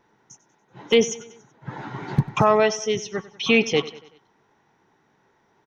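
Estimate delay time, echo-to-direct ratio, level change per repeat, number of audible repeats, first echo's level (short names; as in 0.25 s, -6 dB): 95 ms, -16.5 dB, -6.0 dB, 3, -18.0 dB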